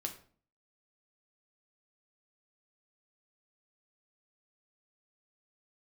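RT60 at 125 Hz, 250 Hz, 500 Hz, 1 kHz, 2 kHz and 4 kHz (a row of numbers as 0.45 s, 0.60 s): 0.60 s, 0.60 s, 0.50 s, 0.45 s, 0.40 s, 0.35 s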